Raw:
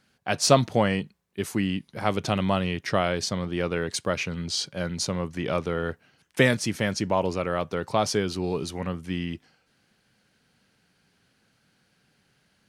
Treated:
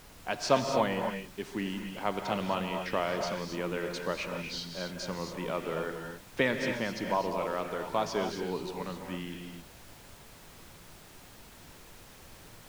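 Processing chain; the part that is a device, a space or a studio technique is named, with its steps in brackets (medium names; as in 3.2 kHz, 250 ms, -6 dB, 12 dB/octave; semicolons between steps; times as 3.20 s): horn gramophone (band-pass 200–4400 Hz; peaking EQ 960 Hz +6.5 dB 0.21 oct; wow and flutter; pink noise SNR 17 dB); gated-style reverb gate 290 ms rising, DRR 3.5 dB; trim -7 dB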